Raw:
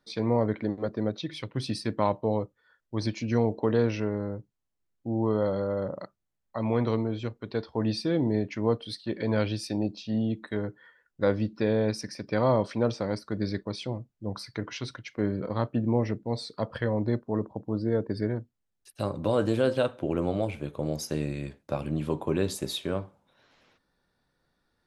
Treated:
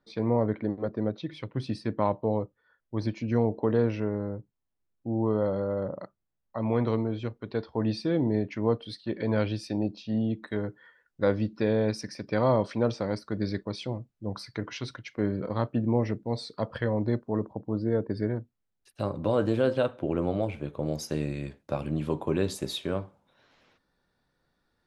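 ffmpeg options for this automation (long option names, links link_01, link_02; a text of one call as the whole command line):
ffmpeg -i in.wav -af "asetnsamples=nb_out_samples=441:pad=0,asendcmd='6.7 lowpass f 3300;10.44 lowpass f 7200;17.53 lowpass f 3200;20.88 lowpass f 7600',lowpass=frequency=1700:poles=1" out.wav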